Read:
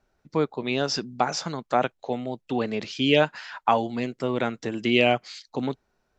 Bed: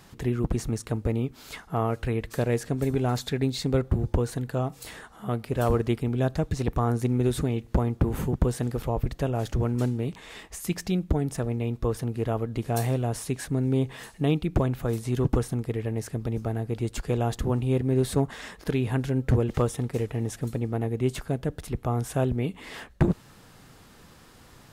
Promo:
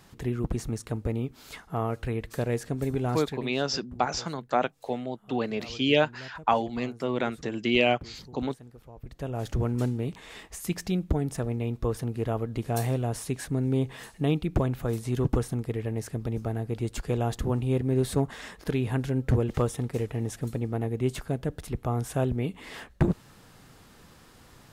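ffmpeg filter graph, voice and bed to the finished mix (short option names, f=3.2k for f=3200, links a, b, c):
-filter_complex "[0:a]adelay=2800,volume=-2.5dB[a];[1:a]volume=16dB,afade=t=out:st=3.14:d=0.4:silence=0.133352,afade=t=in:st=8.99:d=0.56:silence=0.112202[b];[a][b]amix=inputs=2:normalize=0"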